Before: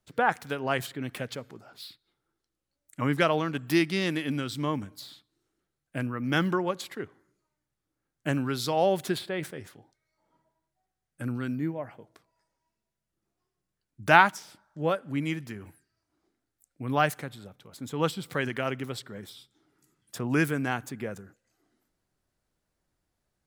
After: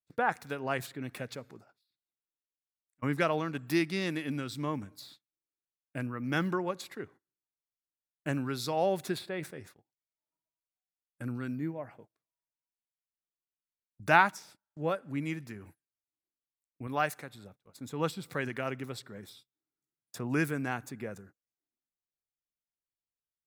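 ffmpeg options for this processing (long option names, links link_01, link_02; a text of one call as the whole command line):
ffmpeg -i in.wav -filter_complex "[0:a]asplit=3[link_01][link_02][link_03];[link_01]afade=type=out:start_time=1.7:duration=0.02[link_04];[link_02]acompressor=threshold=-49dB:ratio=16:attack=3.2:release=140:knee=1:detection=peak,afade=type=in:start_time=1.7:duration=0.02,afade=type=out:start_time=3.02:duration=0.02[link_05];[link_03]afade=type=in:start_time=3.02:duration=0.02[link_06];[link_04][link_05][link_06]amix=inputs=3:normalize=0,asettb=1/sr,asplit=3[link_07][link_08][link_09];[link_07]atrim=end=16.874[link_10];[link_08]atrim=start=16.87:end=17.35,asetpts=PTS-STARTPTS,afade=type=in:duration=0.004:curve=qsin,afade=type=out:start_time=0.476:duration=0.004:curve=qsin,lowshelf=frequency=270:gain=-7.5[link_11];[link_09]atrim=start=17.346[link_12];[link_10][link_11]acrossfade=duration=0.004:curve1=hsin:curve2=qsin[link_13];[link_13][link_12]acrossfade=duration=0.004:curve1=qsin:curve2=hsin,bandreject=frequency=3100:width=8.3,agate=range=-24dB:threshold=-49dB:ratio=16:detection=peak,volume=-4.5dB" out.wav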